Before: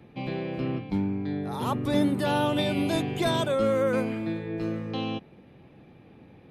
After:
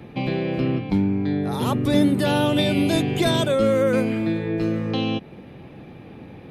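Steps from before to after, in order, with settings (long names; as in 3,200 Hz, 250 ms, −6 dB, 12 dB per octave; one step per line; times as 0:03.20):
dynamic equaliser 990 Hz, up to −6 dB, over −41 dBFS, Q 1.2
in parallel at −0.5 dB: downward compressor, threshold −36 dBFS, peak gain reduction 15 dB
on the sum: level +5 dB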